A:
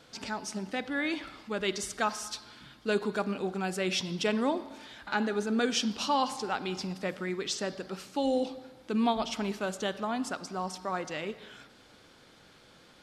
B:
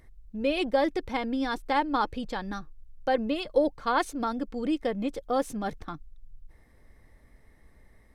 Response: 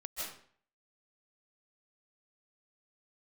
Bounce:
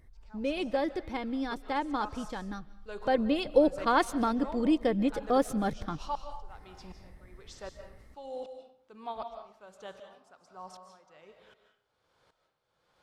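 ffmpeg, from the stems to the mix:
-filter_complex "[0:a]equalizer=f=250:t=o:w=1:g=-10,equalizer=f=500:t=o:w=1:g=5,equalizer=f=1000:t=o:w=1:g=8,aeval=exprs='val(0)*pow(10,-27*if(lt(mod(-1.3*n/s,1),2*abs(-1.3)/1000),1-mod(-1.3*n/s,1)/(2*abs(-1.3)/1000),(mod(-1.3*n/s,1)-2*abs(-1.3)/1000)/(1-2*abs(-1.3)/1000))/20)':c=same,volume=0.188,asplit=2[s0][s1];[s1]volume=0.631[s2];[1:a]volume=0.944,afade=t=in:st=2.67:d=0.79:silence=0.473151,asplit=2[s3][s4];[s4]volume=0.119[s5];[2:a]atrim=start_sample=2205[s6];[s2][s5]amix=inputs=2:normalize=0[s7];[s7][s6]afir=irnorm=-1:irlink=0[s8];[s0][s3][s8]amix=inputs=3:normalize=0,equalizer=f=79:w=0.33:g=5.5"

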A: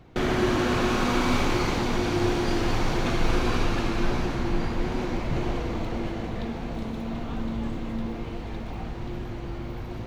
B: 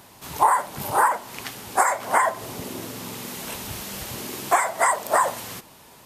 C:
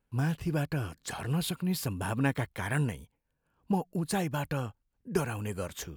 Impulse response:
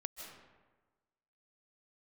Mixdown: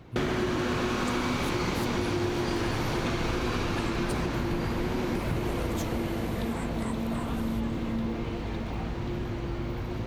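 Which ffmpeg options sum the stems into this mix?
-filter_complex "[0:a]volume=1.33[s0];[1:a]alimiter=limit=0.158:level=0:latency=1:release=179,adelay=2000,volume=0.168[s1];[2:a]acompressor=threshold=0.02:ratio=6,volume=1.12[s2];[s0][s1][s2]amix=inputs=3:normalize=0,highpass=41,equalizer=f=740:t=o:w=0.27:g=-3.5,acompressor=threshold=0.0562:ratio=6"

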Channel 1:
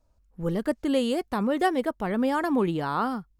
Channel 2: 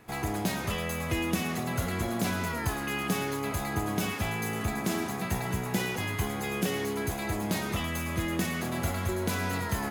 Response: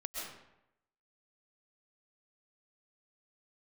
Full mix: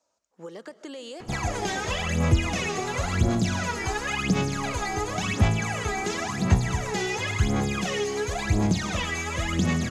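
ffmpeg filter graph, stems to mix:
-filter_complex "[0:a]highpass=440,alimiter=limit=0.0631:level=0:latency=1,acompressor=threshold=0.0126:ratio=10,volume=1.06,asplit=2[s0][s1];[s1]volume=0.211[s2];[1:a]aphaser=in_gain=1:out_gain=1:delay=2.6:decay=0.79:speed=0.94:type=sinusoidal,adelay=1200,volume=0.944,asplit=2[s3][s4];[s4]volume=0.251[s5];[2:a]atrim=start_sample=2205[s6];[s2][s5]amix=inputs=2:normalize=0[s7];[s7][s6]afir=irnorm=-1:irlink=0[s8];[s0][s3][s8]amix=inputs=3:normalize=0,acrossover=split=150|3000[s9][s10][s11];[s10]acompressor=threshold=0.0562:ratio=6[s12];[s9][s12][s11]amix=inputs=3:normalize=0,lowpass=f=6700:t=q:w=2.9,acrossover=split=4100[s13][s14];[s14]acompressor=threshold=0.0112:ratio=4:attack=1:release=60[s15];[s13][s15]amix=inputs=2:normalize=0"

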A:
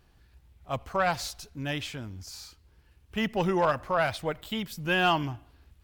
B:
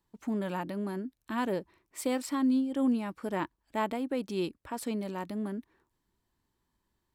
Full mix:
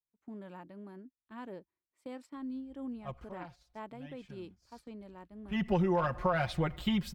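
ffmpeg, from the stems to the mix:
-filter_complex "[0:a]equalizer=f=62:w=0.48:g=9,aecho=1:1:5.6:0.89,adelay=2350,volume=2.66,afade=t=out:st=3.07:d=0.3:silence=0.375837,afade=t=in:st=4.18:d=0.28:silence=0.446684,afade=t=in:st=5.27:d=0.36:silence=0.421697[s0];[1:a]volume=0.211,asplit=2[s1][s2];[s2]apad=whole_len=361246[s3];[s0][s3]sidechaincompress=threshold=0.00141:ratio=3:attack=8.3:release=249[s4];[s4][s1]amix=inputs=2:normalize=0,lowpass=f=2900:p=1,agate=range=0.2:threshold=0.00282:ratio=16:detection=peak,acompressor=threshold=0.0501:ratio=6"

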